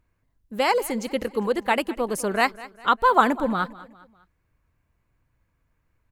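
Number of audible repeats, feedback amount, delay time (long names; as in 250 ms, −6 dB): 3, 43%, 201 ms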